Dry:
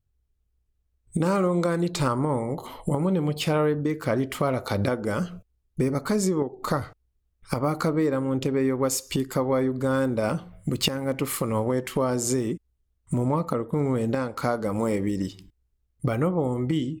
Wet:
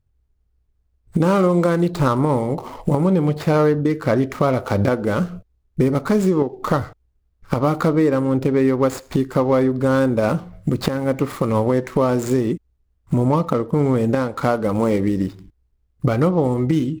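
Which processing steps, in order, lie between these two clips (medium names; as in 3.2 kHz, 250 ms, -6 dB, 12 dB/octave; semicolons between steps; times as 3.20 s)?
median filter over 15 samples; trim +7 dB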